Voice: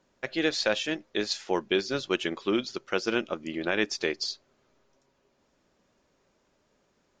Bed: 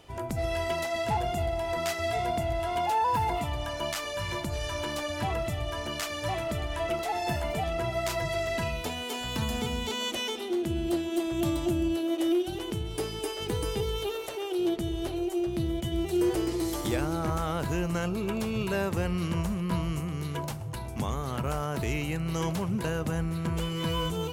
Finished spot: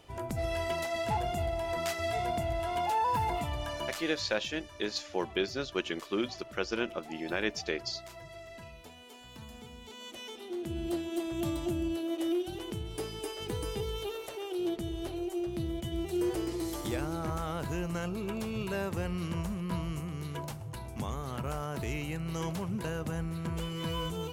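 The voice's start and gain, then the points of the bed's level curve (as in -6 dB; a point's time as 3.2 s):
3.65 s, -5.0 dB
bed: 3.77 s -3 dB
4.43 s -17.5 dB
9.78 s -17.5 dB
10.84 s -5 dB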